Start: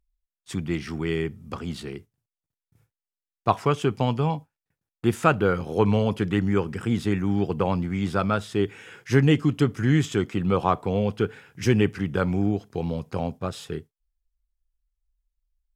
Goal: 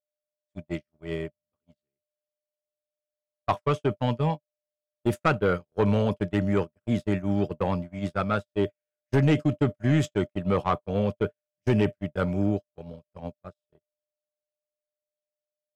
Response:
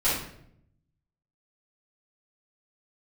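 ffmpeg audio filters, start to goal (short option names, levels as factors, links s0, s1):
-af "asoftclip=type=tanh:threshold=0.2,aeval=exprs='val(0)+0.02*sin(2*PI*600*n/s)':c=same,agate=range=0.00141:threshold=0.0631:ratio=16:detection=peak"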